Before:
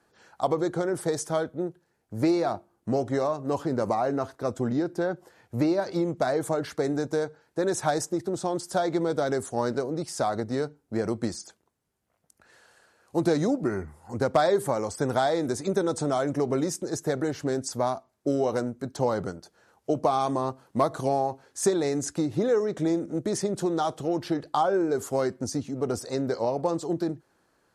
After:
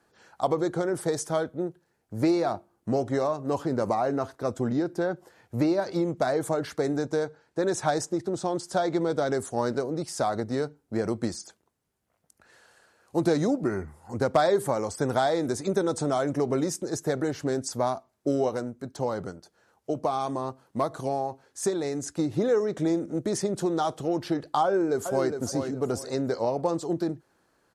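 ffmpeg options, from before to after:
-filter_complex "[0:a]asettb=1/sr,asplit=3[a][b][c];[a]atrim=end=6.984[d];[b]atrim=start=6.98:end=9.34,asetpts=PTS-STARTPTS,afade=t=in:d=0.004:c=qsin,afade=t=out:st=2.356:d=0.004:c=qsin,lowpass=9k[e];[c]atrim=start=9.336[f];[d][e]acrossfade=d=0.004:c1=hsin:c2=qsin[g];[g][f]acrossfade=d=0.004:c1=qsin:c2=hsin,asplit=2[h][i];[i]afade=t=in:st=24.64:d=0.01,afade=t=out:st=25.37:d=0.01,aecho=0:1:410|820|1230:0.446684|0.111671|0.0279177[j];[h][j]amix=inputs=2:normalize=0,asplit=3[k][l][m];[k]atrim=end=18.492[n];[l]atrim=start=18.488:end=22.192,asetpts=PTS-STARTPTS,volume=-3.5dB[o];[m]atrim=start=22.188[p];[n][o]acrossfade=d=0.004:c1=hsin:c2=hsin[q];[q][p]acrossfade=d=0.004:c1=hsin:c2=hsin"

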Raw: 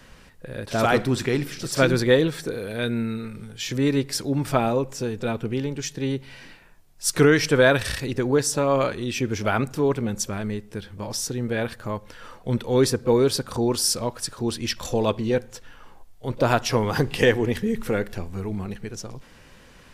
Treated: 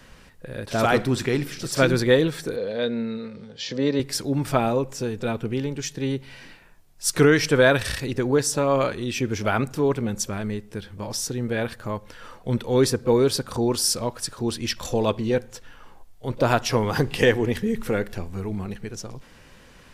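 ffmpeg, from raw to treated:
-filter_complex "[0:a]asettb=1/sr,asplit=3[a][b][c];[a]atrim=end=2.564[d];[b]atrim=start=2.56:end=4,asetpts=PTS-STARTPTS,afade=t=in:d=0.004:c=qsin,afade=t=out:st=1.436:d=0.004:c=qsin,highpass=120,equalizer=f=120:t=q:w=4:g=-8,equalizer=f=340:t=q:w=4:g=-6,equalizer=f=520:t=q:w=4:g=9,equalizer=f=1.4k:t=q:w=4:g=-6,equalizer=f=2.4k:t=q:w=4:g=-6,equalizer=f=4.6k:t=q:w=4:g=4,lowpass=f=5.5k:w=0.5412,lowpass=f=5.5k:w=1.3066[e];[c]atrim=start=3.996[f];[d][e]acrossfade=d=0.004:c1=hsin:c2=qsin[g];[g][f]acrossfade=d=0.004:c1=qsin:c2=hsin"

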